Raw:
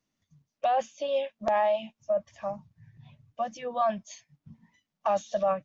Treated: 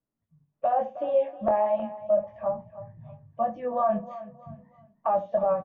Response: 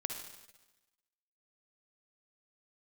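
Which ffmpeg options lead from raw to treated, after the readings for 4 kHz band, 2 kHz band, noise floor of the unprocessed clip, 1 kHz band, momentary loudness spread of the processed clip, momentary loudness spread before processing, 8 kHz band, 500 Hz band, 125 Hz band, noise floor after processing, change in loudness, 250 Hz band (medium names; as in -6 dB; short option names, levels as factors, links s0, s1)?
under -15 dB, -7.0 dB, -85 dBFS, +1.5 dB, 19 LU, 11 LU, no reading, +3.0 dB, +4.5 dB, -83 dBFS, +2.5 dB, +5.0 dB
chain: -filter_complex "[0:a]asplit=2[s0][s1];[s1]adelay=69,lowpass=f=860:p=1,volume=0.224,asplit=2[s2][s3];[s3]adelay=69,lowpass=f=860:p=1,volume=0.22,asplit=2[s4][s5];[s5]adelay=69,lowpass=f=860:p=1,volume=0.22[s6];[s2][s4][s6]amix=inputs=3:normalize=0[s7];[s0][s7]amix=inputs=2:normalize=0,flanger=delay=17:depth=7.4:speed=0.38,alimiter=limit=0.075:level=0:latency=1:release=123,lowpass=1300,asplit=2[s8][s9];[s9]aecho=0:1:315|630|945:0.168|0.0571|0.0194[s10];[s8][s10]amix=inputs=2:normalize=0,dynaudnorm=f=200:g=5:m=3.16,aemphasis=mode=reproduction:type=75kf,volume=0.841"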